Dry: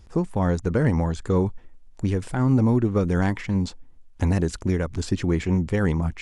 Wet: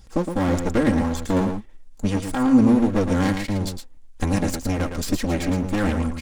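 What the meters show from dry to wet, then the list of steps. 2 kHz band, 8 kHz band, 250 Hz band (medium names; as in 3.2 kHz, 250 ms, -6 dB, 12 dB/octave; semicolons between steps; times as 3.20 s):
+2.5 dB, +7.0 dB, +3.5 dB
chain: comb filter that takes the minimum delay 3.7 ms; treble shelf 3.8 kHz +7.5 dB; flange 1.7 Hz, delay 1.1 ms, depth 3.9 ms, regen +68%; on a send: delay 113 ms -7 dB; on the sum: trim +5.5 dB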